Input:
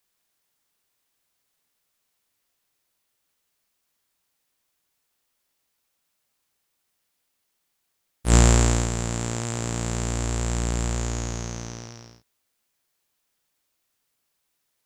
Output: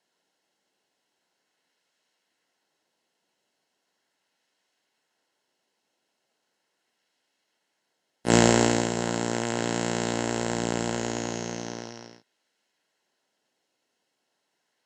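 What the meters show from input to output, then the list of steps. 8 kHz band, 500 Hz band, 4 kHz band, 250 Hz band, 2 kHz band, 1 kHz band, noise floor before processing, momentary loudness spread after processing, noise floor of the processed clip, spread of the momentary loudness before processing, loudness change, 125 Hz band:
-3.5 dB, +5.0 dB, +1.5 dB, +2.5 dB, +3.0 dB, +3.0 dB, -76 dBFS, 15 LU, -79 dBFS, 16 LU, -1.5 dB, -8.0 dB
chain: in parallel at -9.5 dB: decimation with a swept rate 13×, swing 160% 0.38 Hz; on the sum: BPF 200–6000 Hz; notch comb 1200 Hz; gain +3 dB

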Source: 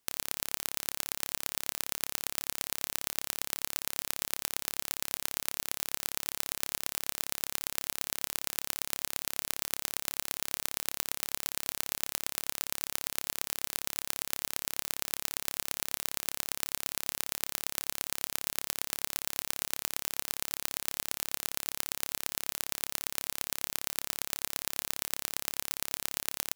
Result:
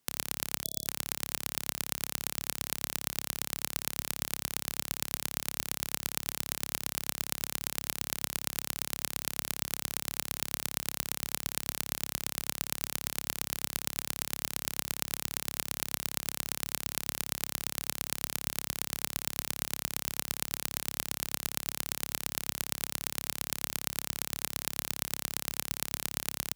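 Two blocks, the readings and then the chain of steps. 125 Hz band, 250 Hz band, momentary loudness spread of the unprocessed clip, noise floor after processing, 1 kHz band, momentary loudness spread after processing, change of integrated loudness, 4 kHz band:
+6.5 dB, +5.5 dB, 1 LU, -68 dBFS, +0.5 dB, 1 LU, 0.0 dB, 0.0 dB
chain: HPF 45 Hz 24 dB/oct; bell 160 Hz +8 dB 1.8 oct; spectral gain 0.65–0.86, 660–3400 Hz -26 dB

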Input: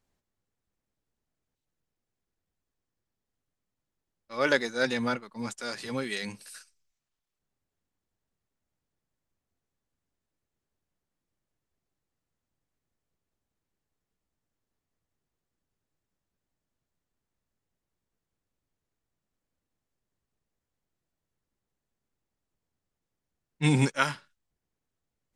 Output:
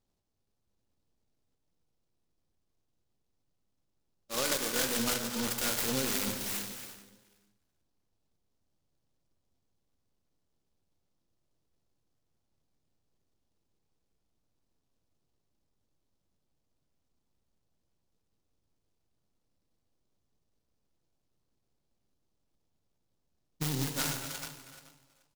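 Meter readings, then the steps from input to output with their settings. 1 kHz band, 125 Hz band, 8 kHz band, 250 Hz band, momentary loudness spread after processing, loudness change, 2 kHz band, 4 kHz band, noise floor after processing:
-5.5 dB, -8.0 dB, +10.0 dB, -5.5 dB, 12 LU, -2.5 dB, -7.0 dB, +2.5 dB, -80 dBFS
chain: half-wave gain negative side -3 dB; compressor 10:1, threshold -32 dBFS, peak gain reduction 13.5 dB; high shelf 2300 Hz +9.5 dB; on a send: feedback echo 0.431 s, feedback 25%, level -16 dB; on the sum: dynamic EQ 1500 Hz, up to +6 dB, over -56 dBFS, Q 7.3; AGC gain up to 4 dB; low-pass opened by the level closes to 1500 Hz, open at -33 dBFS; de-hum 60.31 Hz, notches 35; limiter -20.5 dBFS, peak gain reduction 8 dB; non-linear reverb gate 0.38 s flat, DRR 5 dB; noise-modulated delay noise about 4600 Hz, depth 0.16 ms

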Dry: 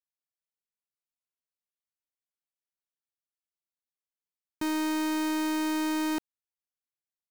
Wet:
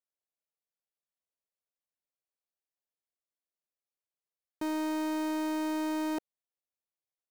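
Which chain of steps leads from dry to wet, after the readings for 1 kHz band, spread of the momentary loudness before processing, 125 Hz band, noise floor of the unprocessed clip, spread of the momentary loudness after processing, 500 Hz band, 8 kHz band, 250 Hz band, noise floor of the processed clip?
-3.0 dB, 4 LU, n/a, under -85 dBFS, 4 LU, +0.5 dB, -8.0 dB, -3.5 dB, under -85 dBFS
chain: bell 560 Hz +11.5 dB 1.4 oct; gain -8 dB

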